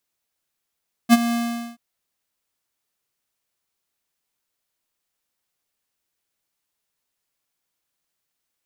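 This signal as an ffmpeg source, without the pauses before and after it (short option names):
-f lavfi -i "aevalsrc='0.355*(2*lt(mod(235*t,1),0.5)-1)':d=0.68:s=44100,afade=t=in:d=0.042,afade=t=out:st=0.042:d=0.031:silence=0.224,afade=t=out:st=0.24:d=0.44"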